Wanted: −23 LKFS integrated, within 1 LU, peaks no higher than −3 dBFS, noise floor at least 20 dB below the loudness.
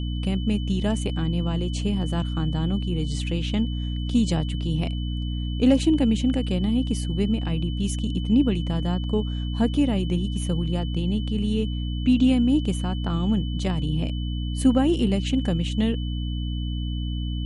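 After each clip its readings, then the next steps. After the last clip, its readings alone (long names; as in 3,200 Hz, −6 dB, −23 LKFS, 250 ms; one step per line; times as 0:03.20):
mains hum 60 Hz; hum harmonics up to 300 Hz; level of the hum −25 dBFS; interfering tone 3,000 Hz; level of the tone −40 dBFS; integrated loudness −24.5 LKFS; sample peak −8.0 dBFS; target loudness −23.0 LKFS
→ mains-hum notches 60/120/180/240/300 Hz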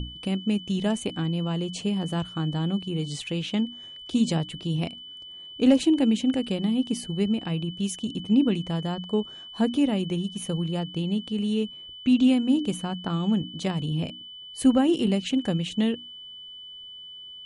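mains hum none found; interfering tone 3,000 Hz; level of the tone −40 dBFS
→ notch filter 3,000 Hz, Q 30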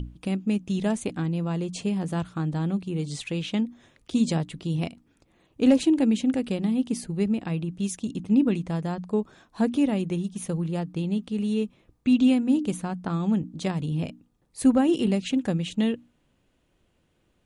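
interfering tone none found; integrated loudness −26.0 LKFS; sample peak −9.0 dBFS; target loudness −23.0 LKFS
→ level +3 dB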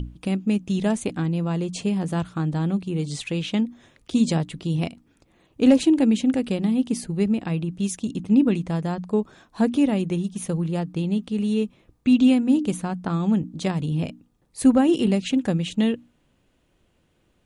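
integrated loudness −23.0 LKFS; sample peak −6.0 dBFS; background noise floor −66 dBFS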